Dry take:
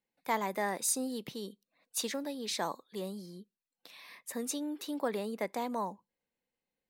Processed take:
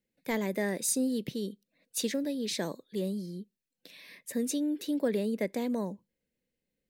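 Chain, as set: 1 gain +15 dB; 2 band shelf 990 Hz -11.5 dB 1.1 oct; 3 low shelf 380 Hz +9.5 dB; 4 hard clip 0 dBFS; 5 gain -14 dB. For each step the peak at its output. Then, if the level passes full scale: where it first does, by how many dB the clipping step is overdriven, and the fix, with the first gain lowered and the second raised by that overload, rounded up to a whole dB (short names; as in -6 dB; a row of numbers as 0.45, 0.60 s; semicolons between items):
-3.5, -3.5, -3.5, -3.5, -17.5 dBFS; no overload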